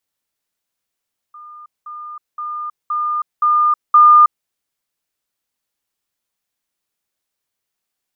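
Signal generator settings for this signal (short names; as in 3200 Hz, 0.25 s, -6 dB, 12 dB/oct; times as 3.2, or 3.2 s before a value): level ladder 1210 Hz -34.5 dBFS, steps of 6 dB, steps 6, 0.32 s 0.20 s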